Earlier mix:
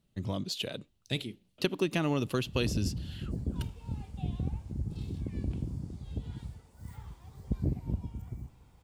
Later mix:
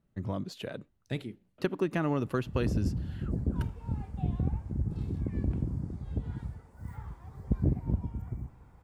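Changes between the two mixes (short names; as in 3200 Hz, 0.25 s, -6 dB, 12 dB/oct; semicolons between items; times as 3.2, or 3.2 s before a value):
background +3.5 dB; master: add resonant high shelf 2300 Hz -9.5 dB, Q 1.5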